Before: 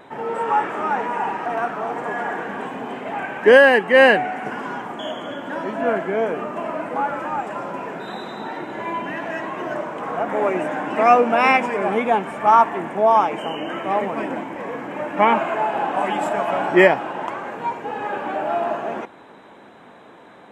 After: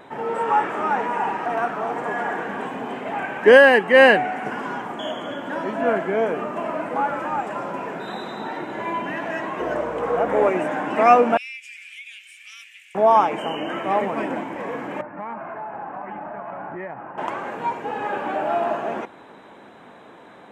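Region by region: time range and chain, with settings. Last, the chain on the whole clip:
9.59–10.48 s: peaking EQ 480 Hz +11.5 dB 0.26 oct + mains buzz 60 Hz, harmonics 16, -41 dBFS -1 dB/octave
11.37–12.95 s: elliptic high-pass 2.4 kHz, stop band 60 dB + compression 3:1, threshold -36 dBFS
15.01–17.18 s: Gaussian low-pass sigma 5.5 samples + compression 4:1, threshold -22 dBFS + peaking EQ 390 Hz -11 dB 2.4 oct
whole clip: none

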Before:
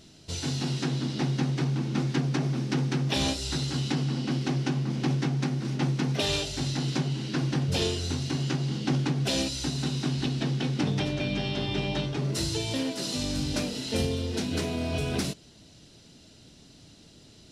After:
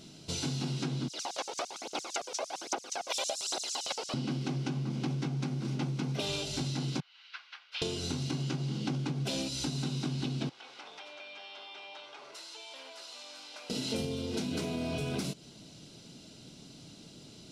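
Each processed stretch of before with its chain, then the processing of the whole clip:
1.08–4.14 s: high-pass 310 Hz 24 dB/octave + phaser 1.2 Hz, delay 2.3 ms, feedback 59% + LFO high-pass square 8.8 Hz 660–6600 Hz
7.00–7.82 s: high-pass 1.4 kHz 24 dB/octave + distance through air 310 m + upward expansion, over -51 dBFS
10.49–13.70 s: Bessel high-pass 1.3 kHz, order 4 + tilt EQ -4.5 dB/octave + compression 3:1, threshold -46 dBFS
whole clip: resonant low shelf 110 Hz -6.5 dB, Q 1.5; band-stop 1.8 kHz, Q 6.3; compression 5:1, threshold -33 dBFS; trim +1.5 dB

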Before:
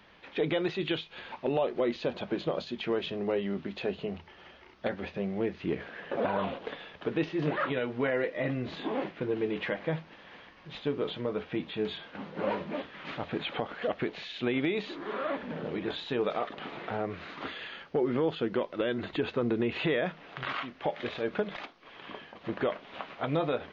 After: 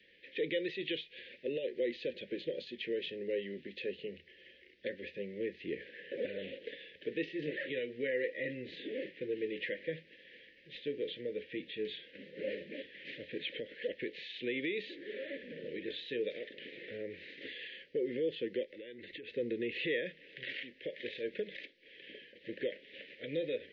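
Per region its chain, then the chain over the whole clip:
18.63–19.30 s: peaking EQ 2.1 kHz +4.5 dB 0.44 oct + compression 8:1, threshold -37 dBFS
whole clip: Chebyshev band-stop 530–1800 Hz, order 4; three-band isolator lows -14 dB, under 380 Hz, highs -16 dB, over 4.2 kHz; trim -1.5 dB

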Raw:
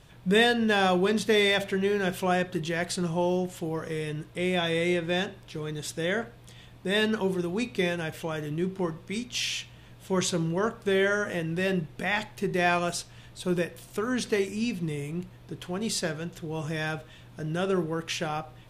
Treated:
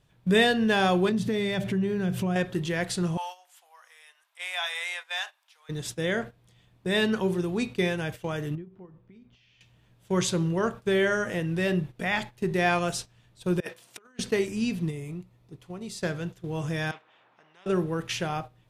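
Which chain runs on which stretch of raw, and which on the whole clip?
1.09–2.36 s: peaking EQ 140 Hz +14.5 dB 2 oct + compression 3:1, threshold -28 dBFS
3.17–5.69 s: steep high-pass 770 Hz + treble shelf 11 kHz +7 dB
8.55–9.61 s: compression 20:1, threshold -34 dBFS + tape spacing loss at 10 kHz 37 dB
13.60–14.19 s: frequency weighting A + compressor with a negative ratio -39 dBFS, ratio -0.5
14.90–16.01 s: peaking EQ 3.1 kHz -4.5 dB 0.23 oct + band-stop 1.6 kHz, Q 6 + compression 12:1, threshold -33 dBFS
16.91–17.66 s: ladder band-pass 890 Hz, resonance 65% + spectrum-flattening compressor 4:1
whole clip: gate -37 dBFS, range -13 dB; peaking EQ 130 Hz +3 dB 1.7 oct

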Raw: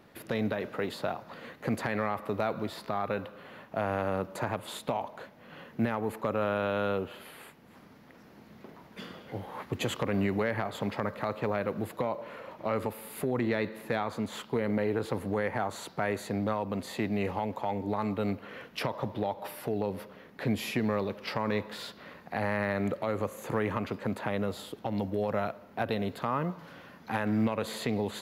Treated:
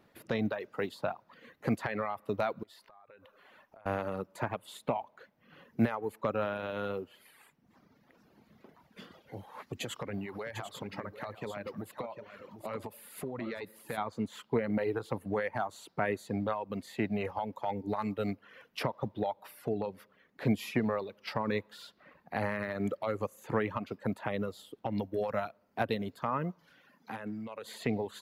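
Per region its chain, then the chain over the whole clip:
2.63–3.86 s: peaking EQ 150 Hz -10.5 dB 2.2 oct + compression 12:1, threshold -43 dBFS
9.11–13.98 s: peaking EQ 7 kHz +4 dB 2.3 oct + compression 2.5:1, threshold -32 dBFS + delay 749 ms -7.5 dB
26.77–27.74 s: high-pass 110 Hz 24 dB/octave + compression 4:1, threshold -32 dBFS
whole clip: reverb removal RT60 1.2 s; upward expansion 1.5:1, over -43 dBFS; trim +2.5 dB

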